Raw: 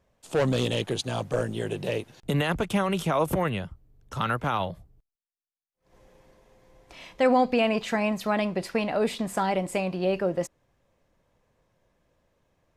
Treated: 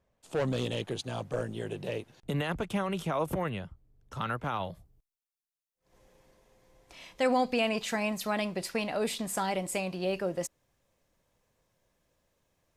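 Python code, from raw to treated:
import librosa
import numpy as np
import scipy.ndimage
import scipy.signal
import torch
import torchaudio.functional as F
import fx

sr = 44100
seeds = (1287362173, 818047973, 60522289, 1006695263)

y = fx.high_shelf(x, sr, hz=3800.0, db=fx.steps((0.0, -2.5), (4.64, 7.0), (7.16, 12.0)))
y = F.gain(torch.from_numpy(y), -6.0).numpy()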